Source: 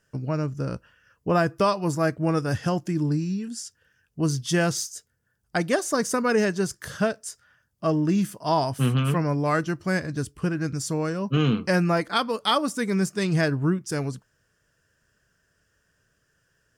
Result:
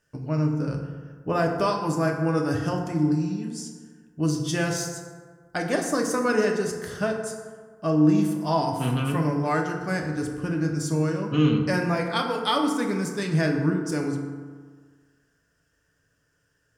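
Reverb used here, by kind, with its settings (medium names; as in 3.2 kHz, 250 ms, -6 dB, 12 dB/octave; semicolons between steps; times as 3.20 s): FDN reverb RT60 1.6 s, low-frequency decay 1×, high-frequency decay 0.45×, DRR 1.5 dB; trim -3.5 dB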